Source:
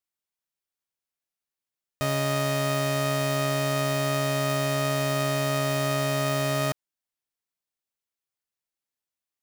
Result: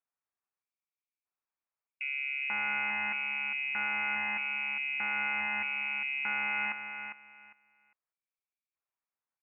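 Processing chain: peak limiter -22.5 dBFS, peak gain reduction 4.5 dB; LFO low-pass square 0.8 Hz 400–1700 Hz; on a send: feedback delay 403 ms, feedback 20%, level -8 dB; on the sum: frequency inversion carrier 2.7 kHz; trim -5 dB

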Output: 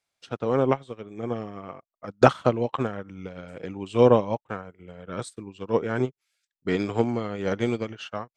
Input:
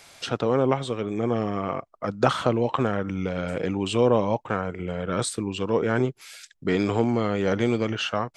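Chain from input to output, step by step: upward expansion 2.5:1, over -42 dBFS; trim +6.5 dB

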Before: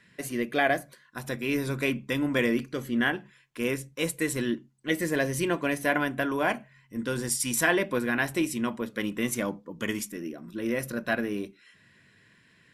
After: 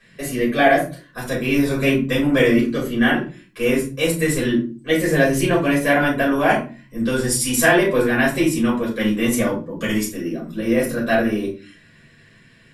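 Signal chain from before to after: simulated room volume 170 m³, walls furnished, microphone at 5.6 m; trim -1.5 dB

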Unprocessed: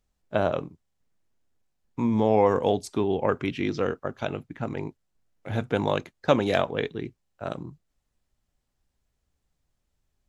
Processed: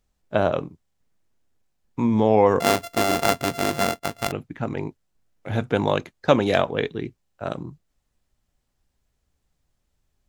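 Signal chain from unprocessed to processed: 2.60–4.32 s: sorted samples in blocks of 64 samples; trim +3.5 dB

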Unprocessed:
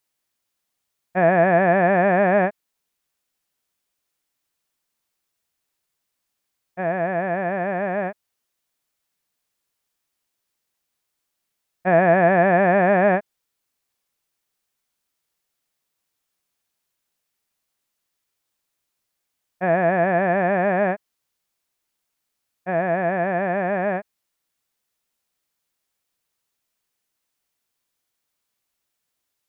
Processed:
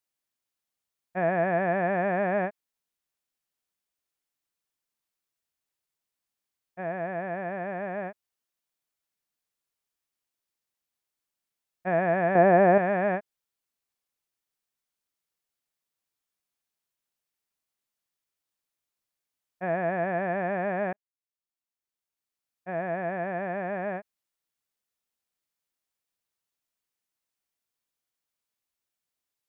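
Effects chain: 12.35–12.78 s: peaking EQ 410 Hz +9 dB 2.9 oct; 20.93–22.84 s: fade in; trim -9 dB

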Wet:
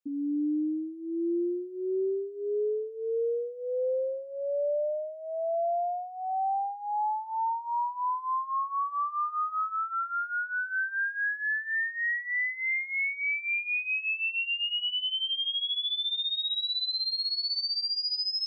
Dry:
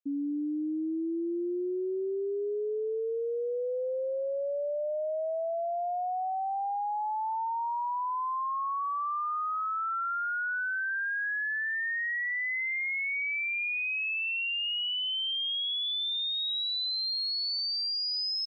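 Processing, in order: 9.76–10.67 s: tilt shelf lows +3.5 dB; chorus 0.14 Hz, delay 16.5 ms, depth 3 ms; trim +4 dB

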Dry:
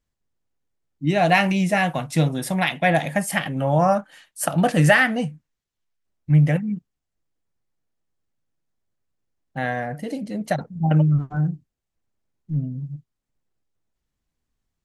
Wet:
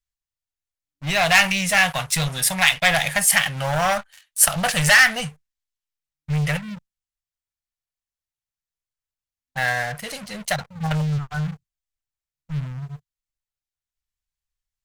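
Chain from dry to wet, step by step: waveshaping leveller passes 3; amplifier tone stack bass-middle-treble 10-0-10; trim +2.5 dB

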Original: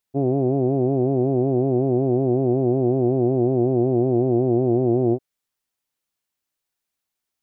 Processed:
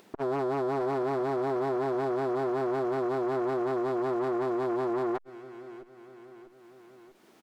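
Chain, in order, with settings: small resonant body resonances 210/330 Hz, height 18 dB, ringing for 35 ms; overdrive pedal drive 22 dB, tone 1 kHz, clips at -8.5 dBFS; one-sided clip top -23 dBFS, bottom -12 dBFS; peak limiter -22.5 dBFS, peak gain reduction 10 dB; feedback delay 644 ms, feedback 34%, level -20 dB; upward compressor, threshold -44 dBFS; transformer saturation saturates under 610 Hz

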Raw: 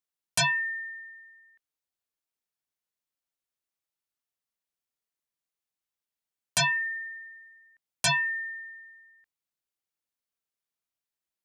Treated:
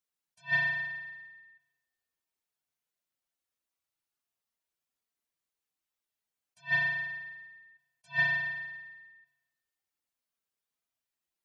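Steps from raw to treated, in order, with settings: spectral contrast enhancement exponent 1.7; spring tank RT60 1.2 s, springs 35 ms, chirp 25 ms, DRR 5 dB; attacks held to a fixed rise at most 340 dB/s

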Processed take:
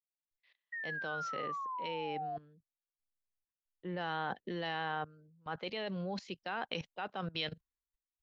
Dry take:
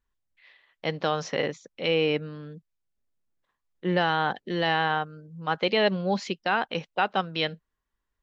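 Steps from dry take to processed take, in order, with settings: painted sound fall, 0.72–2.37 s, 690–1900 Hz -26 dBFS; level held to a coarse grid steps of 19 dB; three bands expanded up and down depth 70%

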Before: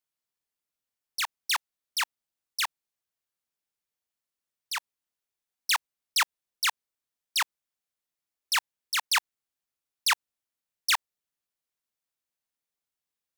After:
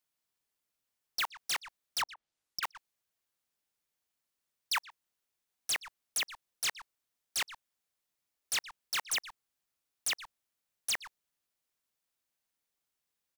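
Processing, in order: 2.01–2.63 s: low-pass that closes with the level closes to 780 Hz, closed at -29.5 dBFS; speakerphone echo 120 ms, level -22 dB; wavefolder -28.5 dBFS; trim +3 dB

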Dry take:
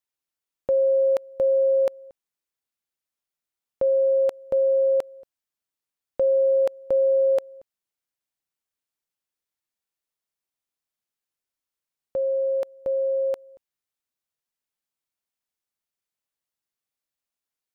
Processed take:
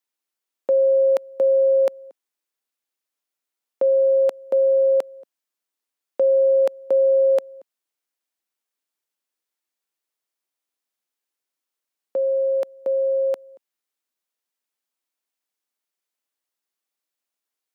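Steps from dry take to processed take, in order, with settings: high-pass 230 Hz 24 dB/octave; trim +3 dB

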